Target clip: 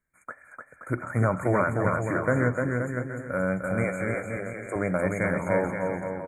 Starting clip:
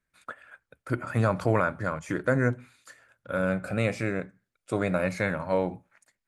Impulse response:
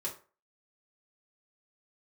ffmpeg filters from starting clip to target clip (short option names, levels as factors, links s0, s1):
-filter_complex "[0:a]asettb=1/sr,asplit=3[s0][s1][s2];[s0]atrim=end=3.844[s3];[s1]atrim=start=3.84:end=4.76,asetpts=PTS-STARTPTS,afade=t=in:d=0.004:c=qsin,afade=t=out:st=0.916:d=0.004:c=qsin,highpass=430[s4];[s2]atrim=start=4.756[s5];[s3][s4]acrossfade=d=0.004:c1=hsin:c2=qsin[s6];[s6][s5]acrossfade=d=0.004:c1=qsin:c2=hsin,aecho=1:1:300|525|693.8|820.3|915.2:0.631|0.398|0.251|0.158|0.1,afftfilt=real='re*(1-between(b*sr/4096,2400,6400))':imag='im*(1-between(b*sr/4096,2400,6400))':win_size=4096:overlap=0.75"